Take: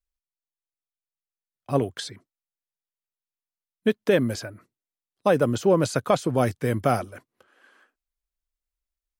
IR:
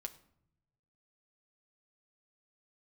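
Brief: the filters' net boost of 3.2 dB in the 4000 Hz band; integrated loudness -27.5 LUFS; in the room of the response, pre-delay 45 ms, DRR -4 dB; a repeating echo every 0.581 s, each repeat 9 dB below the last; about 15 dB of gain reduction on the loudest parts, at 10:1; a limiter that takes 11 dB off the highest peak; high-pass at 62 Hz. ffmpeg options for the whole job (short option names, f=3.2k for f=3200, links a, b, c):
-filter_complex "[0:a]highpass=62,equalizer=f=4k:t=o:g=4,acompressor=threshold=-30dB:ratio=10,alimiter=level_in=4dB:limit=-24dB:level=0:latency=1,volume=-4dB,aecho=1:1:581|1162|1743|2324:0.355|0.124|0.0435|0.0152,asplit=2[a][b];[1:a]atrim=start_sample=2205,adelay=45[c];[b][c]afir=irnorm=-1:irlink=0,volume=7dB[d];[a][d]amix=inputs=2:normalize=0,volume=7.5dB"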